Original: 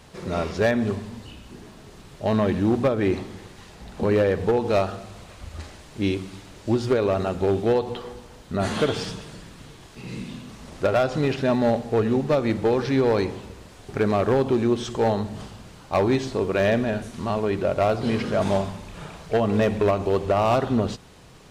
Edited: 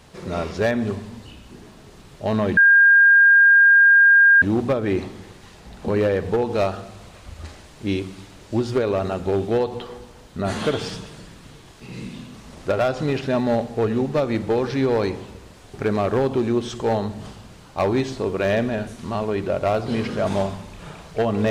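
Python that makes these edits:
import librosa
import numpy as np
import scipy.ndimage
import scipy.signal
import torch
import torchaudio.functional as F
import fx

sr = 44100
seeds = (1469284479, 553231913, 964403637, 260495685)

y = fx.edit(x, sr, fx.insert_tone(at_s=2.57, length_s=1.85, hz=1610.0, db=-9.0), tone=tone)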